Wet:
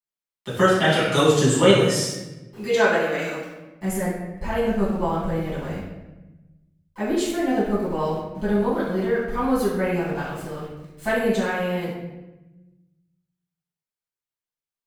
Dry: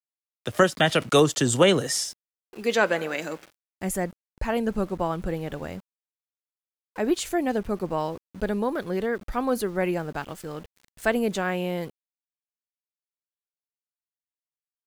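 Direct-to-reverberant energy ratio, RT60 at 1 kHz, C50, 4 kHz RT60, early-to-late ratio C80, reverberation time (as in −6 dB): −10.5 dB, 1.0 s, 0.5 dB, 0.75 s, 3.5 dB, 1.0 s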